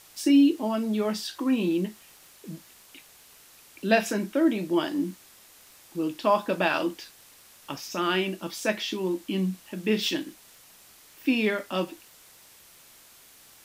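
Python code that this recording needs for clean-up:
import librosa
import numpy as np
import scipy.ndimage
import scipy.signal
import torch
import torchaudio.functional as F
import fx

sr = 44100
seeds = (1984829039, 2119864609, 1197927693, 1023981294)

y = fx.fix_declick_ar(x, sr, threshold=6.5)
y = fx.noise_reduce(y, sr, print_start_s=10.64, print_end_s=11.14, reduce_db=18.0)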